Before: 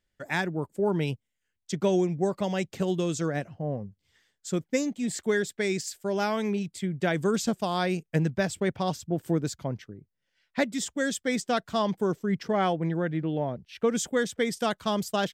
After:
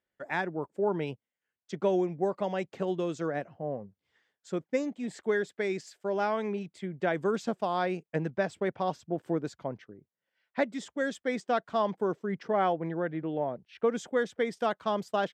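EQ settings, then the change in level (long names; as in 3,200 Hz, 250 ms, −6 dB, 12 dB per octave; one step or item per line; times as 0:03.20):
resonant band-pass 760 Hz, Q 0.57
0.0 dB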